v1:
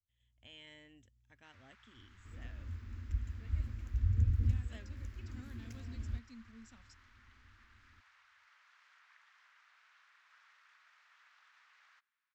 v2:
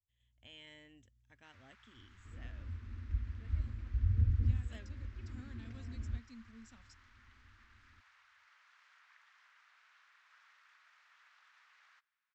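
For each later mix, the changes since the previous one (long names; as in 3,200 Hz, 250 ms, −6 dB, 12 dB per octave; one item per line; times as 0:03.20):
second sound: add high-frequency loss of the air 270 metres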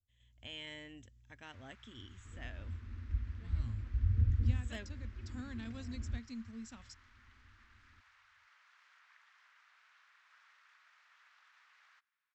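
speech +8.5 dB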